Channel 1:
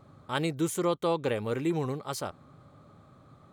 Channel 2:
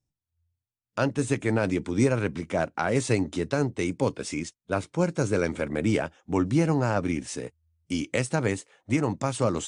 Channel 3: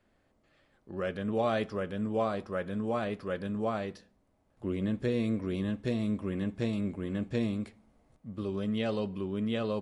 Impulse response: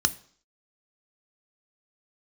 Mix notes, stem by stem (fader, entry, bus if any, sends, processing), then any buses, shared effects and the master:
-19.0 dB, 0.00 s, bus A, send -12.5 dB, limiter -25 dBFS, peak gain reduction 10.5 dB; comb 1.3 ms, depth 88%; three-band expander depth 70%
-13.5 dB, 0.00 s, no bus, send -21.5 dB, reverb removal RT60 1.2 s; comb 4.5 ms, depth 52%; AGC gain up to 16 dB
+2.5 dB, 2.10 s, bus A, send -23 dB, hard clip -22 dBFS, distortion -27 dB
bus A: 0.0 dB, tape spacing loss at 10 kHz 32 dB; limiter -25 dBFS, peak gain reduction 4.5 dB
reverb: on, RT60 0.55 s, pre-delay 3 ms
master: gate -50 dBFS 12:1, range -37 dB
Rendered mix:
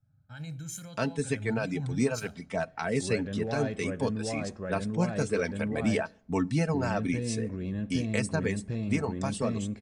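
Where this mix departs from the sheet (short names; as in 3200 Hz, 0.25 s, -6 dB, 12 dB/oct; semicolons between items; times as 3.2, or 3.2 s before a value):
stem 1 -19.0 dB -> -9.0 dB; master: missing gate -50 dBFS 12:1, range -37 dB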